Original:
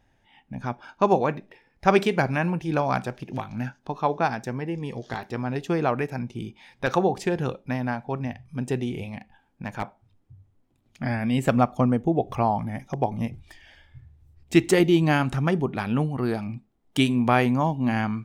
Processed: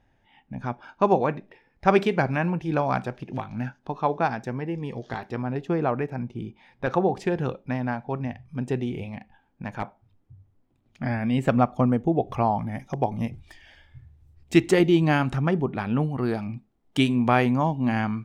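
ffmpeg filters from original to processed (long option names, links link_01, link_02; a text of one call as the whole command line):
ffmpeg -i in.wav -af "asetnsamples=nb_out_samples=441:pad=0,asendcmd='5.42 lowpass f 1400;7.09 lowpass f 3000;11.88 lowpass f 4900;12.72 lowpass f 10000;14.6 lowpass f 4600;15.38 lowpass f 2400;16.03 lowpass f 5400',lowpass=frequency=3200:poles=1" out.wav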